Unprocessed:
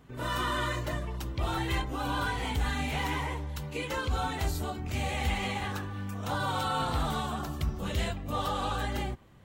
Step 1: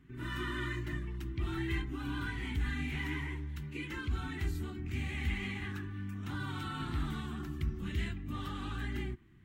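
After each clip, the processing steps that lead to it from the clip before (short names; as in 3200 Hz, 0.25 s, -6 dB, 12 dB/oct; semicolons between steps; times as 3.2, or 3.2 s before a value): EQ curve 240 Hz 0 dB, 360 Hz +3 dB, 520 Hz -24 dB, 1900 Hz +1 dB, 3100 Hz -5 dB, 4500 Hz -10 dB; gain -3.5 dB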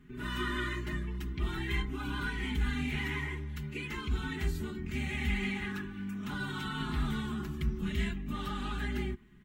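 comb 4.8 ms, depth 78%; gain +2 dB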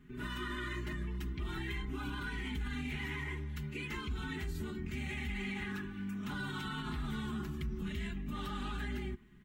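limiter -29 dBFS, peak gain reduction 8.5 dB; gain -1.5 dB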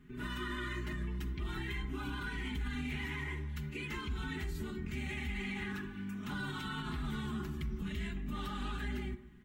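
reverb RT60 0.90 s, pre-delay 38 ms, DRR 13.5 dB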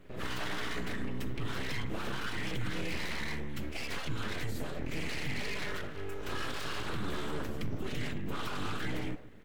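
full-wave rectifier; gain +5.5 dB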